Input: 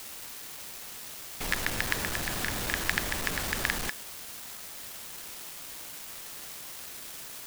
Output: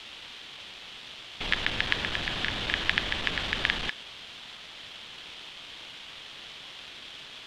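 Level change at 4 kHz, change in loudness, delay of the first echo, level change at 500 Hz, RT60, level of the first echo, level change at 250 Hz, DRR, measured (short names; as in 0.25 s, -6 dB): +6.5 dB, +1.5 dB, none, -1.0 dB, none, none, -1.0 dB, none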